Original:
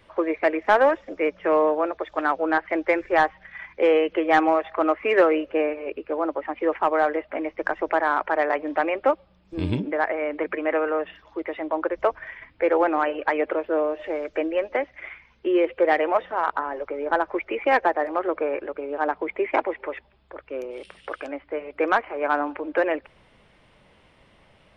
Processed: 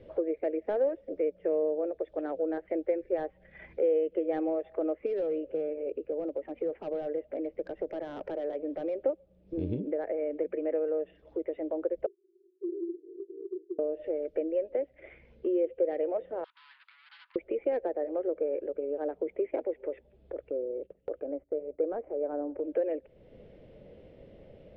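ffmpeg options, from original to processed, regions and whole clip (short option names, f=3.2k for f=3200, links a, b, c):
-filter_complex "[0:a]asettb=1/sr,asplit=3[a][b][c];[a]atrim=end=5.064[d];[b]atrim=start=5.06:end=9.05,asetpts=PTS-STARTPTS,afade=t=in:d=0.004:c=qsin,afade=t=out:st=3.986:d=0.004:c=qsin,acompressor=threshold=-30dB:ratio=1.5:attack=3.2:release=140:knee=1:detection=peak,asoftclip=type=hard:threshold=-23.5dB[e];[c]atrim=start=9.046[f];[d][e]acrossfade=d=0.004:c1=hsin:c2=qsin[g];[g][f]acrossfade=d=0.004:c1=qsin:c2=hsin,asettb=1/sr,asplit=3[h][i][j];[h]atrim=end=12.064[k];[i]atrim=start=12.06:end=13.79,asetpts=PTS-STARTPTS,afade=t=in:d=0.004:c=qsin,afade=t=out:st=1.726:d=0.004:c=qsin,acrusher=bits=8:dc=4:mix=0:aa=0.000001,asuperpass=centerf=370:order=8:qfactor=6.3[l];[j]atrim=start=13.786[m];[k][l]acrossfade=d=0.004:c1=hsin:c2=qsin[n];[n][m]acrossfade=d=0.004:c1=qsin:c2=hsin,asettb=1/sr,asplit=3[o][p][q];[o]atrim=end=16.444[r];[p]atrim=start=16.44:end=17.36,asetpts=PTS-STARTPTS,afade=t=in:d=0.004:c=qsin,afade=t=out:st=0.916:d=0.004:c=qsin,aeval=exprs='(tanh(70.8*val(0)+0.6)-tanh(0.6))/70.8':c=same,asuperpass=centerf=2200:order=20:qfactor=0.57,tiltshelf=f=1.3k:g=-5[s];[q]atrim=start=17.356[t];[r][s]acrossfade=d=0.004:c1=hsin:c2=qsin[u];[u][t]acrossfade=d=0.004:c1=qsin:c2=hsin,asettb=1/sr,asplit=3[v][w][x];[v]atrim=end=20.504[y];[w]atrim=start=20.5:end=22.59,asetpts=PTS-STARTPTS,afade=t=in:d=0.004:c=qsin,afade=t=out:st=2.086:d=0.004:c=qsin,lowpass=1.1k,agate=range=-14dB:threshold=-50dB:ratio=16:release=100:detection=peak[z];[x]atrim=start=22.586[aa];[y][z]acrossfade=d=0.004:c1=hsin:c2=qsin[ab];[ab][aa]acrossfade=d=0.004:c1=qsin:c2=hsin,lowshelf=f=730:t=q:w=3:g=12,acompressor=threshold=-32dB:ratio=2,lowpass=4k,volume=-8dB"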